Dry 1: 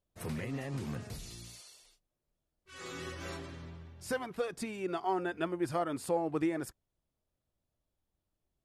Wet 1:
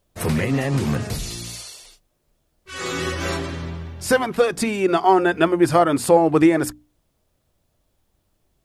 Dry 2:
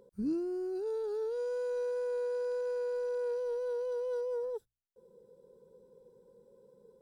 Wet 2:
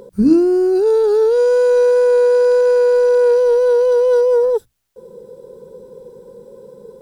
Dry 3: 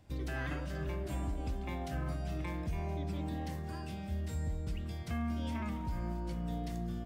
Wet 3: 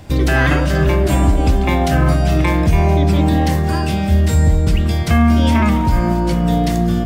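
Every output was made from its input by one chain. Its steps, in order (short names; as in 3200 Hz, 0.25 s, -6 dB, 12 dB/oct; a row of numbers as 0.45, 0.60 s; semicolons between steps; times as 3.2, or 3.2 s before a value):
notches 60/120/180/240/300 Hz; normalise peaks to -3 dBFS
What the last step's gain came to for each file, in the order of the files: +17.0, +22.0, +24.0 dB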